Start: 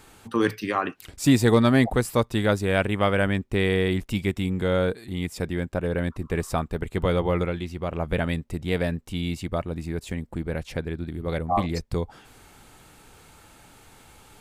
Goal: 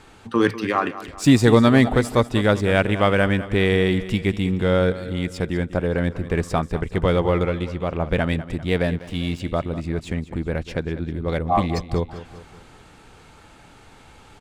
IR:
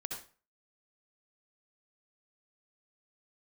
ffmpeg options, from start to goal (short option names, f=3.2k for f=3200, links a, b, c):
-filter_complex "[0:a]adynamicsmooth=sensitivity=6.5:basefreq=6.4k,aecho=1:1:197|394|591|788|985:0.188|0.0923|0.0452|0.0222|0.0109,asettb=1/sr,asplit=3[a][b][c];[a]atrim=end=8.974[d];[b]atrim=start=8.97:end=9.4,asetpts=PTS-STARTPTS,afade=t=in:d=0.004:c=qsin,afade=t=out:st=0.426:d=0.004:c=qsin,aeval=exprs='sgn(val(0))*max(abs(val(0))-0.00531,0)':c=same[e];[c]atrim=start=9.396[f];[d][e]acrossfade=d=0.004:c1=hsin:c2=qsin[g];[g][f]acrossfade=d=0.004:c1=qsin:c2=hsin,volume=4dB"